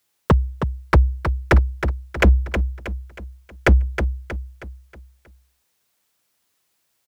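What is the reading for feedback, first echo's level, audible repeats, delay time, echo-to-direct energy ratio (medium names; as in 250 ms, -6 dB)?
43%, -8.0 dB, 4, 317 ms, -7.0 dB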